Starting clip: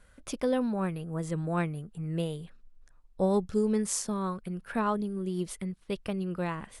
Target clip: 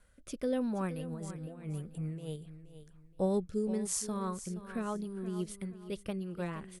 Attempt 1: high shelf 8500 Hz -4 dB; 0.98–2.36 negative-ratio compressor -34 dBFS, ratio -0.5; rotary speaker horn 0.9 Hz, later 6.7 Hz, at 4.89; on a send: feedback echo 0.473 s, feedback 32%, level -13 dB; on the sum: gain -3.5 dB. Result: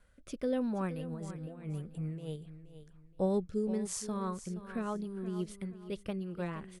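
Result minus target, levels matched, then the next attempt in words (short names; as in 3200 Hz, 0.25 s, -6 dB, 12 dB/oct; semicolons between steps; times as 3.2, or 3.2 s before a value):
8000 Hz band -4.5 dB
high shelf 8500 Hz +6.5 dB; 0.98–2.36 negative-ratio compressor -34 dBFS, ratio -0.5; rotary speaker horn 0.9 Hz, later 6.7 Hz, at 4.89; on a send: feedback echo 0.473 s, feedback 32%, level -13 dB; on the sum: gain -3.5 dB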